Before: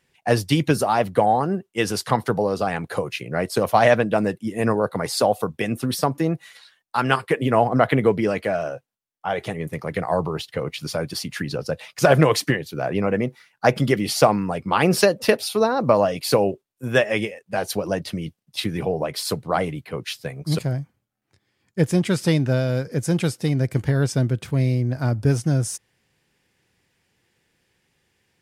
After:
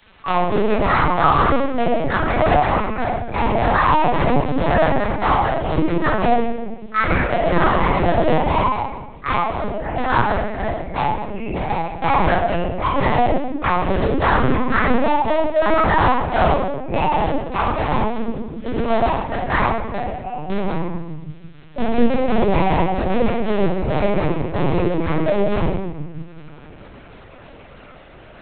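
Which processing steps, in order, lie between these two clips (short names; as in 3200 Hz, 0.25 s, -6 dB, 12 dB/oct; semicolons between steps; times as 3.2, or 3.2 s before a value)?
pitch shift by moving bins +8.5 st; limiter -15.5 dBFS, peak gain reduction 9 dB; reverse; upward compressor, threshold -41 dBFS; reverse; mistuned SSB -69 Hz 270–2300 Hz; crackle 96/s -42 dBFS; in parallel at -5 dB: bit-crush 4-bit; on the sum: reverb RT60 1.0 s, pre-delay 5 ms, DRR -11 dB; LPC vocoder at 8 kHz pitch kept; three-band squash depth 40%; gain -7 dB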